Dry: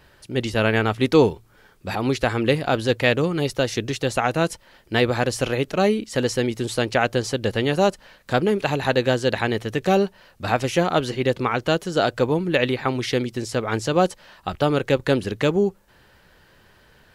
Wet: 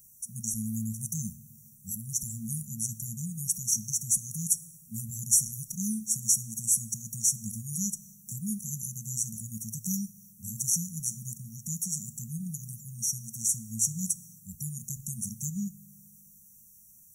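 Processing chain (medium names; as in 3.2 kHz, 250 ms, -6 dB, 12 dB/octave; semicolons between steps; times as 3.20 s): RIAA curve recording; FDN reverb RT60 2 s, low-frequency decay 1×, high-frequency decay 0.45×, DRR 14 dB; FFT band-reject 230–5600 Hz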